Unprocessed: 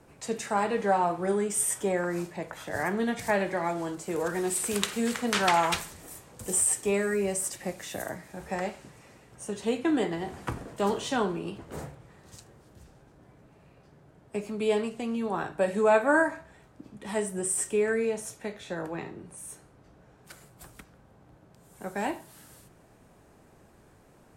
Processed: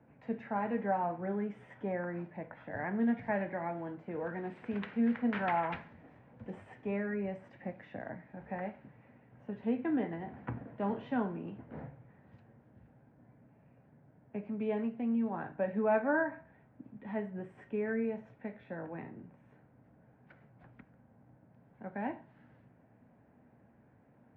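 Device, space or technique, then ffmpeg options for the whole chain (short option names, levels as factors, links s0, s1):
bass cabinet: -af "highpass=86,equalizer=f=120:t=q:w=4:g=5,equalizer=f=240:t=q:w=4:g=8,equalizer=f=380:t=q:w=4:g=-7,equalizer=f=1200:t=q:w=4:g=-8,lowpass=f=2100:w=0.5412,lowpass=f=2100:w=1.3066,volume=0.473"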